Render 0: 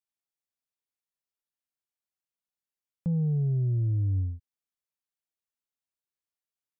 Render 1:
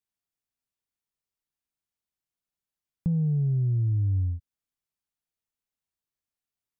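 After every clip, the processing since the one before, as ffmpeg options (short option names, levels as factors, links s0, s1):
-af "lowshelf=f=230:g=9,bandreject=f=540:w=12,acompressor=threshold=0.0708:ratio=6"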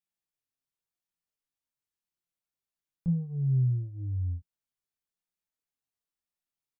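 -filter_complex "[0:a]asplit=2[s0][s1];[s1]alimiter=level_in=1.06:limit=0.0631:level=0:latency=1,volume=0.944,volume=1[s2];[s0][s2]amix=inputs=2:normalize=0,flanger=delay=5.5:depth=2.1:regen=60:speed=0.94:shape=sinusoidal,asplit=2[s3][s4];[s4]adelay=23,volume=0.708[s5];[s3][s5]amix=inputs=2:normalize=0,volume=0.447"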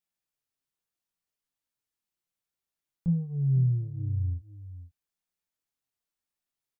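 -af "aecho=1:1:494:0.2,volume=1.19"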